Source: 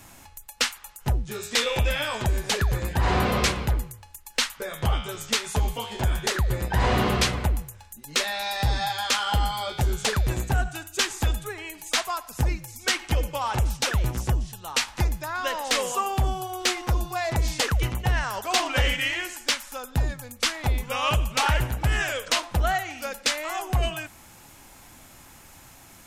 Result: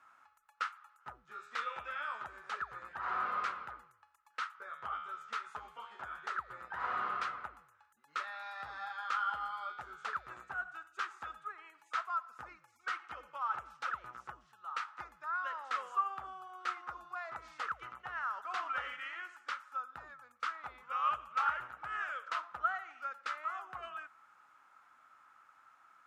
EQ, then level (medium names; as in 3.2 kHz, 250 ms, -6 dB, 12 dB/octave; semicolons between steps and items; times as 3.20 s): band-pass filter 1.3 kHz, Q 9.1; +2.0 dB